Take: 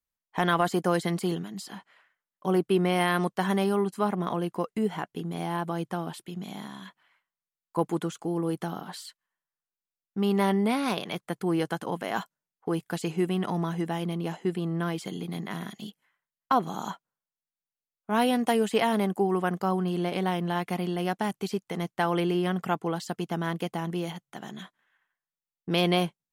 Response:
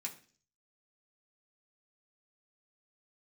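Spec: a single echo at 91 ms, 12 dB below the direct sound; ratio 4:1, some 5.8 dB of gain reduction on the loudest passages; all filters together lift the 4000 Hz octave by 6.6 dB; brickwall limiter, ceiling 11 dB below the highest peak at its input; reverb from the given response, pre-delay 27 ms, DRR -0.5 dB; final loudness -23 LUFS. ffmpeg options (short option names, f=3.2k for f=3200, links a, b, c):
-filter_complex "[0:a]equalizer=f=4k:t=o:g=9,acompressor=threshold=-25dB:ratio=4,alimiter=limit=-22.5dB:level=0:latency=1,aecho=1:1:91:0.251,asplit=2[a][b];[1:a]atrim=start_sample=2205,adelay=27[c];[b][c]afir=irnorm=-1:irlink=0,volume=2dB[d];[a][d]amix=inputs=2:normalize=0,volume=8dB"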